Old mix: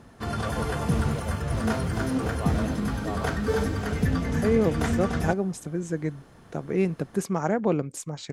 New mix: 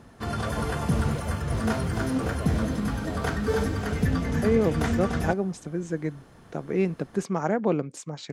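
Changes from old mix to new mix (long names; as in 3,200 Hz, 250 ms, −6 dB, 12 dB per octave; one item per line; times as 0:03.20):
first voice: add Chebyshev low-pass filter 630 Hz, order 4
second voice: add band-pass filter 130–6,600 Hz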